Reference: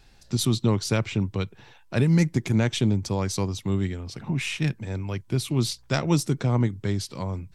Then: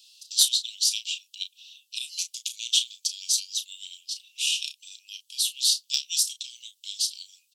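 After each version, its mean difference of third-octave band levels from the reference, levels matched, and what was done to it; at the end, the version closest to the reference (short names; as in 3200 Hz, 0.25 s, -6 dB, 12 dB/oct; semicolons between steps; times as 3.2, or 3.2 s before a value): 22.5 dB: steep high-pass 2800 Hz 96 dB/oct; in parallel at -5.5 dB: overloaded stage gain 21.5 dB; on the sum: doubler 33 ms -10 dB; gain +6 dB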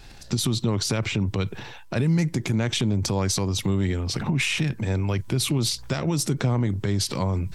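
4.5 dB: compressor 2.5:1, threshold -31 dBFS, peak gain reduction 10.5 dB; limiter -24 dBFS, peak gain reduction 8.5 dB; transient shaper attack +2 dB, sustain +8 dB; gain +8.5 dB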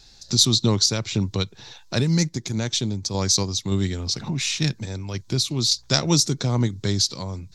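3.5 dB: band shelf 5100 Hz +13.5 dB 1.2 oct; in parallel at +1.5 dB: compressor, threshold -32 dBFS, peak gain reduction 18.5 dB; on the sum: random-step tremolo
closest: third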